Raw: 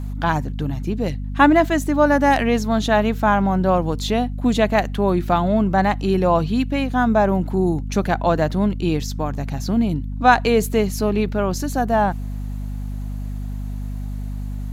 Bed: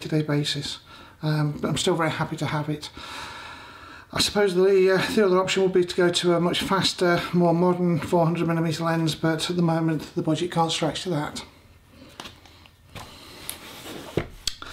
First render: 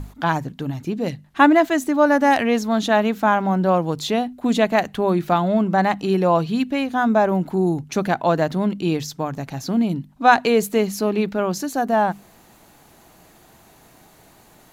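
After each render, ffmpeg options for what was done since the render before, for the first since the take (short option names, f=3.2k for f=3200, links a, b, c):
-af "bandreject=f=50:t=h:w=6,bandreject=f=100:t=h:w=6,bandreject=f=150:t=h:w=6,bandreject=f=200:t=h:w=6,bandreject=f=250:t=h:w=6"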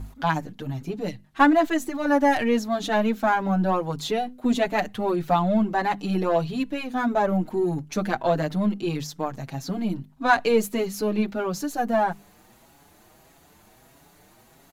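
-filter_complex "[0:a]aeval=exprs='if(lt(val(0),0),0.708*val(0),val(0))':c=same,asplit=2[a][b];[b]adelay=6,afreqshift=1.6[c];[a][c]amix=inputs=2:normalize=1"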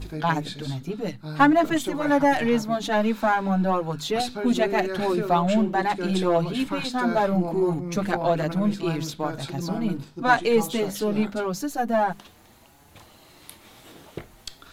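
-filter_complex "[1:a]volume=-10.5dB[a];[0:a][a]amix=inputs=2:normalize=0"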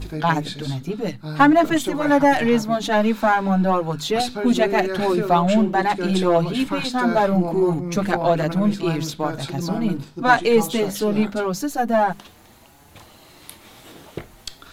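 -af "volume=4dB,alimiter=limit=-2dB:level=0:latency=1"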